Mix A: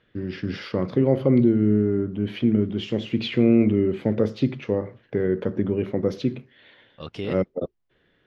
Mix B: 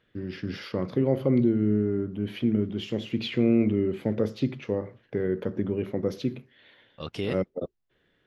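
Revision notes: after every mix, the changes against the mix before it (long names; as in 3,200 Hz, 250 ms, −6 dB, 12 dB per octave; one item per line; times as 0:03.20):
first voice −4.5 dB
master: remove high-frequency loss of the air 57 metres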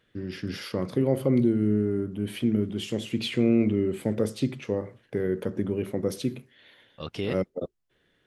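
first voice: remove moving average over 5 samples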